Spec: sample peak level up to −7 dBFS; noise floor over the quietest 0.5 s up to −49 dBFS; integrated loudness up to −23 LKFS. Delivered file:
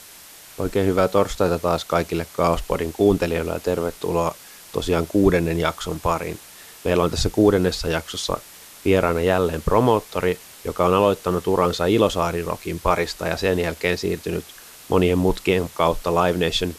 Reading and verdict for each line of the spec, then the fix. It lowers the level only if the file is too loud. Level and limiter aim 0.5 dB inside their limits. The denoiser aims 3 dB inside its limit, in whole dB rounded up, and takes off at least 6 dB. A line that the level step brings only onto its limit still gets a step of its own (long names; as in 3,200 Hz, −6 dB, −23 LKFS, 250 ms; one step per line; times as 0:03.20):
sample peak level −4.0 dBFS: out of spec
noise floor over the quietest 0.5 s −44 dBFS: out of spec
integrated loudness −21.5 LKFS: out of spec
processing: broadband denoise 6 dB, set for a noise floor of −44 dBFS
level −2 dB
brickwall limiter −7.5 dBFS